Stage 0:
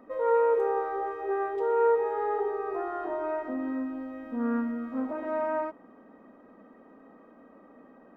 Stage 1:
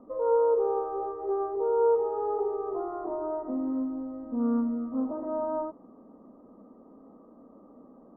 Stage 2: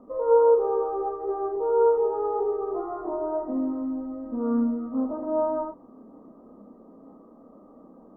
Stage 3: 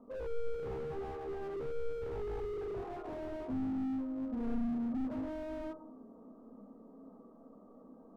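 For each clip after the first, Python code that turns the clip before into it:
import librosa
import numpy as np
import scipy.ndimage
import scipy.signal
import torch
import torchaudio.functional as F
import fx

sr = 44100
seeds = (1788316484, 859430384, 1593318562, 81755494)

y1 = scipy.signal.sosfilt(scipy.signal.ellip(4, 1.0, 70, 1200.0, 'lowpass', fs=sr, output='sos'), x)
y1 = fx.low_shelf(y1, sr, hz=350.0, db=8.0)
y1 = y1 * 10.0 ** (-2.5 / 20.0)
y2 = fx.chorus_voices(y1, sr, voices=4, hz=0.58, base_ms=29, depth_ms=3.3, mix_pct=35)
y2 = y2 * 10.0 ** (5.5 / 20.0)
y3 = fx.room_shoebox(y2, sr, seeds[0], volume_m3=840.0, walls='furnished', distance_m=1.6)
y3 = fx.slew_limit(y3, sr, full_power_hz=14.0)
y3 = y3 * 10.0 ** (-8.5 / 20.0)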